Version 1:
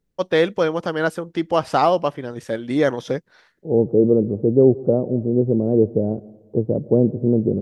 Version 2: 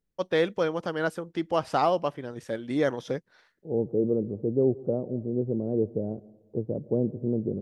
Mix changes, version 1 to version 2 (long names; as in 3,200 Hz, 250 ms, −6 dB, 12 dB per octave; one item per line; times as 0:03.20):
first voice −7.0 dB
second voice −10.0 dB